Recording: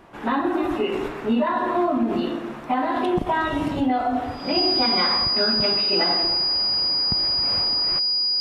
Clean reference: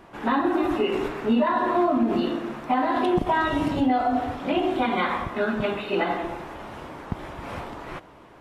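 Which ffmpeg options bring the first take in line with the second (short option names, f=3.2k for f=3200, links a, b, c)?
-af "bandreject=f=4.9k:w=30"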